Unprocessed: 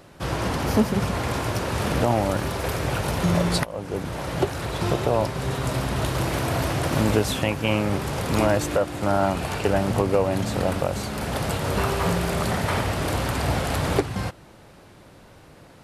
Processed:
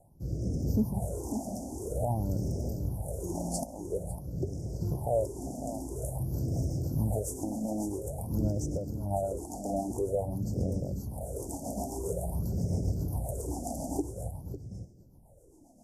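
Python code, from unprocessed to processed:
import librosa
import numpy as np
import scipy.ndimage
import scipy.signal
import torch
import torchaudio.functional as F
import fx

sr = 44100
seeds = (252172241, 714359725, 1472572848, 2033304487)

p1 = fx.rotary_switch(x, sr, hz=0.75, then_hz=7.5, switch_at_s=5.85)
p2 = p1 + fx.echo_single(p1, sr, ms=552, db=-9.0, dry=0)
p3 = fx.phaser_stages(p2, sr, stages=6, low_hz=110.0, high_hz=1000.0, hz=0.49, feedback_pct=50)
p4 = scipy.signal.sosfilt(scipy.signal.cheby2(4, 40, [1200.0, 3900.0], 'bandstop', fs=sr, output='sos'), p3)
p5 = fx.peak_eq(p4, sr, hz=1400.0, db=9.5, octaves=0.31)
y = p5 * 10.0 ** (-4.5 / 20.0)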